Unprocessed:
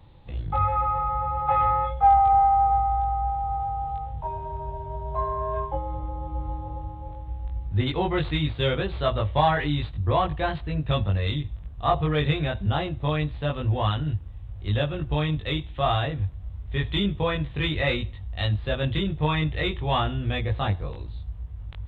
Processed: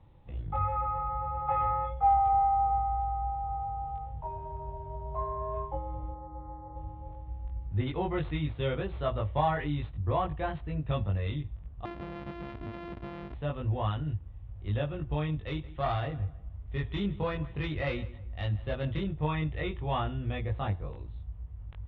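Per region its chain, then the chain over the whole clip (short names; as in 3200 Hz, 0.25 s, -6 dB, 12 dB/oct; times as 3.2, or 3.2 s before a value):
6.14–6.76 brick-wall FIR low-pass 2100 Hz + low shelf 230 Hz -8.5 dB
11.85–13.34 sample sorter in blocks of 128 samples + compressor 16:1, threshold -29 dBFS
15.47–19.05 self-modulated delay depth 0.11 ms + darkening echo 0.16 s, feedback 33%, low-pass 2800 Hz, level -17.5 dB
whole clip: LPF 3500 Hz 24 dB/oct; high shelf 2700 Hz -8 dB; notch 1600 Hz, Q 27; gain -6 dB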